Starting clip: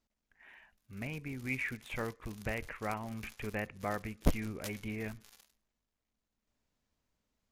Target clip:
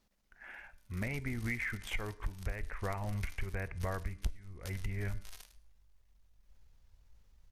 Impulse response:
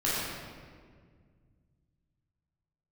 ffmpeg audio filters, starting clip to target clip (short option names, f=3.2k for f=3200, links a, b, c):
-filter_complex "[0:a]asubboost=boost=10:cutoff=77,asetrate=40440,aresample=44100,atempo=1.09051,acompressor=threshold=-40dB:ratio=16,bandreject=f=295.7:t=h:w=4,bandreject=f=591.4:t=h:w=4,bandreject=f=887.1:t=h:w=4,bandreject=f=1.1828k:t=h:w=4,bandreject=f=1.4785k:t=h:w=4,bandreject=f=1.7742k:t=h:w=4,bandreject=f=2.0699k:t=h:w=4,bandreject=f=2.3656k:t=h:w=4,bandreject=f=2.6613k:t=h:w=4,bandreject=f=2.957k:t=h:w=4,bandreject=f=3.2527k:t=h:w=4,bandreject=f=3.5484k:t=h:w=4,bandreject=f=3.8441k:t=h:w=4,bandreject=f=4.1398k:t=h:w=4,bandreject=f=4.4355k:t=h:w=4,bandreject=f=4.7312k:t=h:w=4,bandreject=f=5.0269k:t=h:w=4,bandreject=f=5.3226k:t=h:w=4,bandreject=f=5.6183k:t=h:w=4,bandreject=f=5.914k:t=h:w=4,bandreject=f=6.2097k:t=h:w=4,bandreject=f=6.5054k:t=h:w=4,bandreject=f=6.8011k:t=h:w=4,bandreject=f=7.0968k:t=h:w=4,bandreject=f=7.3925k:t=h:w=4,bandreject=f=7.6882k:t=h:w=4,bandreject=f=7.9839k:t=h:w=4,bandreject=f=8.2796k:t=h:w=4,bandreject=f=8.5753k:t=h:w=4,bandreject=f=8.871k:t=h:w=4,bandreject=f=9.1667k:t=h:w=4,bandreject=f=9.4624k:t=h:w=4,bandreject=f=9.7581k:t=h:w=4,bandreject=f=10.0538k:t=h:w=4,bandreject=f=10.3495k:t=h:w=4,asplit=2[a][b];[1:a]atrim=start_sample=2205,atrim=end_sample=6174[c];[b][c]afir=irnorm=-1:irlink=0,volume=-31.5dB[d];[a][d]amix=inputs=2:normalize=0,volume=7.5dB"